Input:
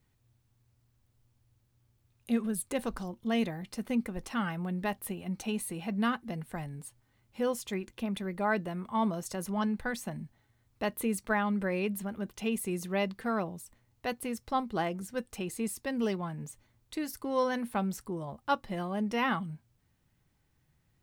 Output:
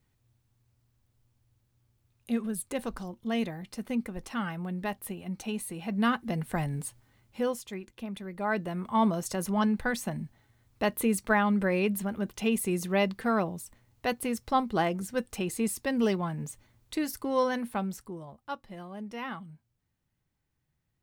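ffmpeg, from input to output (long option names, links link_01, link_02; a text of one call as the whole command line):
ffmpeg -i in.wav -af "volume=17.5dB,afade=type=in:start_time=5.79:duration=0.97:silence=0.334965,afade=type=out:start_time=6.76:duration=0.9:silence=0.223872,afade=type=in:start_time=8.3:duration=0.63:silence=0.375837,afade=type=out:start_time=17.01:duration=1.39:silence=0.237137" out.wav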